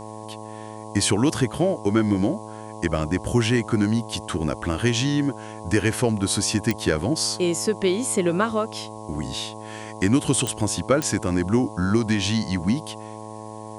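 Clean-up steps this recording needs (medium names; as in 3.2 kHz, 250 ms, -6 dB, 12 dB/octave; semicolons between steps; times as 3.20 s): de-click; de-hum 108.5 Hz, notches 10; noise print and reduce 30 dB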